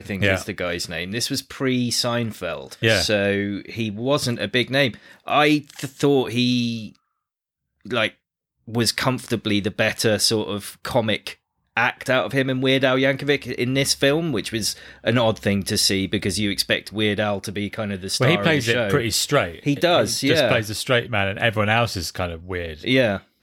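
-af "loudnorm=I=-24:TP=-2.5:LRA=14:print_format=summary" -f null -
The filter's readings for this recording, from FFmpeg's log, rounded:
Input Integrated:    -21.3 LUFS
Input True Peak:      -4.6 dBTP
Input LRA:             2.9 LU
Input Threshold:     -31.4 LUFS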